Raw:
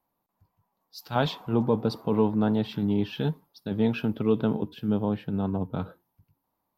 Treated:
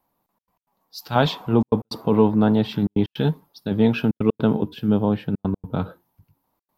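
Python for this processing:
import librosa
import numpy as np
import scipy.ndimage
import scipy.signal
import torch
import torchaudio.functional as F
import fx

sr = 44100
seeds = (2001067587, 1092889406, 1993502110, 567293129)

y = fx.step_gate(x, sr, bpm=157, pattern='xxxx.x.xxxxxx', floor_db=-60.0, edge_ms=4.5)
y = F.gain(torch.from_numpy(y), 6.5).numpy()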